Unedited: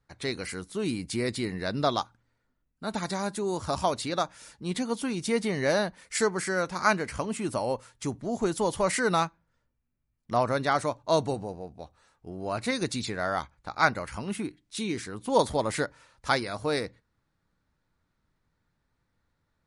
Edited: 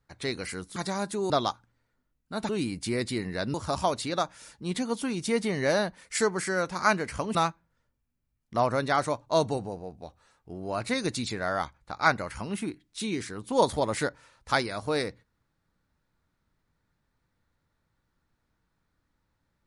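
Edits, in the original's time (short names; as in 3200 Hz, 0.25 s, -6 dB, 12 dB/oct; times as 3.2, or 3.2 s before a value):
0.76–1.81 swap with 3–3.54
7.35–9.12 cut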